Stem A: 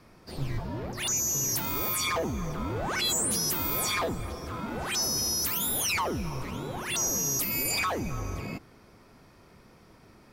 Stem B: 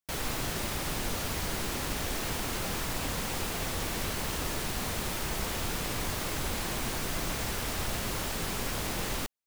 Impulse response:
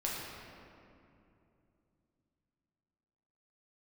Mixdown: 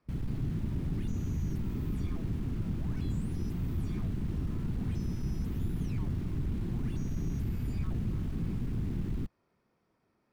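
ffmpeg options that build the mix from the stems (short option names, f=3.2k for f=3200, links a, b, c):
-filter_complex "[0:a]acompressor=threshold=-34dB:ratio=6,highshelf=f=3.7k:g=-9,volume=-18dB[a];[1:a]asoftclip=type=tanh:threshold=-36.5dB,bass=f=250:g=15,treble=f=4k:g=-10,afwtdn=0.0282,volume=3dB[b];[a][b]amix=inputs=2:normalize=0,lowshelf=f=81:g=-10.5"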